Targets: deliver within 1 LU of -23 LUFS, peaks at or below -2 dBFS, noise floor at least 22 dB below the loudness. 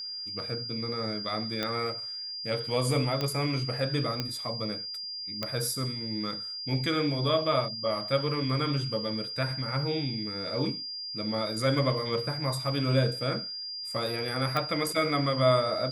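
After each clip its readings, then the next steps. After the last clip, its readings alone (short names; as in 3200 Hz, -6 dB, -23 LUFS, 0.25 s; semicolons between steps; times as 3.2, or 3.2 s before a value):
clicks 5; steady tone 4800 Hz; tone level -35 dBFS; loudness -29.5 LUFS; peak -11.5 dBFS; loudness target -23.0 LUFS
-> de-click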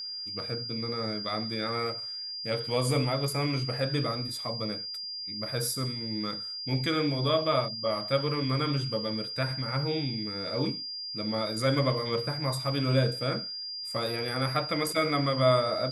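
clicks 0; steady tone 4800 Hz; tone level -35 dBFS
-> notch 4800 Hz, Q 30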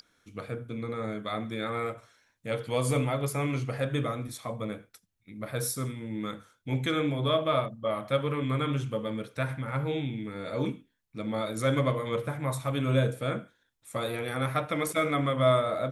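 steady tone none; loudness -30.5 LUFS; peak -12.0 dBFS; loudness target -23.0 LUFS
-> gain +7.5 dB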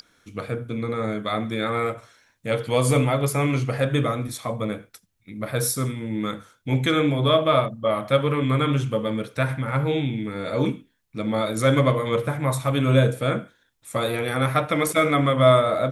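loudness -23.0 LUFS; peak -4.5 dBFS; noise floor -66 dBFS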